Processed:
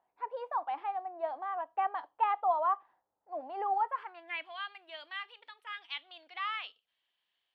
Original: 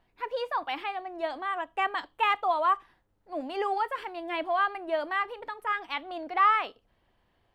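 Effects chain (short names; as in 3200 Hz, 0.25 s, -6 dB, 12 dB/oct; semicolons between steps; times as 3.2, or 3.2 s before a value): band-pass sweep 810 Hz -> 3300 Hz, 3.83–4.57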